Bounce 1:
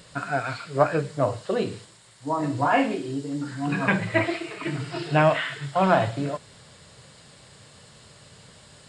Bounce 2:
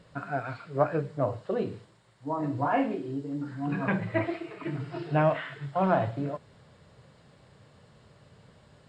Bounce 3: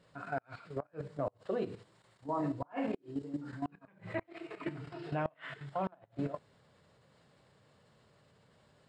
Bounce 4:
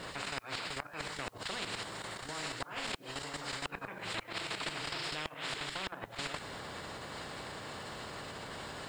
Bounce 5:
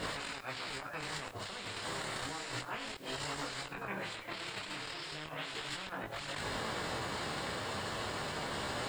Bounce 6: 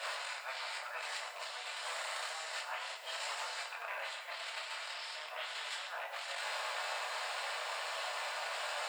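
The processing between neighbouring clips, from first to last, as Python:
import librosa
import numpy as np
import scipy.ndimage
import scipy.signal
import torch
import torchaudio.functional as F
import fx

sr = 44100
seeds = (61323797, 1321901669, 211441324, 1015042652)

y1 = fx.lowpass(x, sr, hz=1100.0, slope=6)
y1 = y1 * librosa.db_to_amplitude(-3.5)
y2 = fx.low_shelf(y1, sr, hz=130.0, db=-8.0)
y2 = fx.level_steps(y2, sr, step_db=11)
y2 = fx.gate_flip(y2, sr, shuts_db=-24.0, range_db=-32)
y3 = fx.spectral_comp(y2, sr, ratio=10.0)
y3 = y3 * librosa.db_to_amplitude(3.5)
y4 = fx.over_compress(y3, sr, threshold_db=-44.0, ratio=-1.0)
y4 = y4 + 10.0 ** (-18.0 / 20.0) * np.pad(y4, (int(104 * sr / 1000.0), 0))[:len(y4)]
y4 = fx.detune_double(y4, sr, cents=11)
y4 = y4 * librosa.db_to_amplitude(7.0)
y5 = fx.rattle_buzz(y4, sr, strikes_db=-46.0, level_db=-34.0)
y5 = scipy.signal.sosfilt(scipy.signal.ellip(4, 1.0, 60, 590.0, 'highpass', fs=sr, output='sos'), y5)
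y5 = fx.rev_fdn(y5, sr, rt60_s=0.81, lf_ratio=0.9, hf_ratio=0.95, size_ms=20.0, drr_db=3.0)
y5 = y5 * librosa.db_to_amplitude(-1.0)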